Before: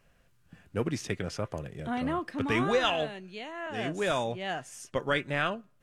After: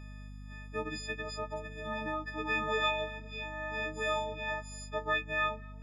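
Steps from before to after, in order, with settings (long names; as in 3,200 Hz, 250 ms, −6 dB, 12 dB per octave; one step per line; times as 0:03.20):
every partial snapped to a pitch grid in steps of 6 semitones
high-pass filter 780 Hz 6 dB per octave
in parallel at +2 dB: downward compressor, threshold −36 dBFS, peak gain reduction 17.5 dB
on the sum: mains hum 50 Hz, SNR 14 dB
head-to-tape spacing loss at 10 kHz 25 dB
on a send: tape delay 238 ms, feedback 56%, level −23 dB, low-pass 1,800 Hz
on the sum: one half of a high-frequency compander encoder only
level −4.5 dB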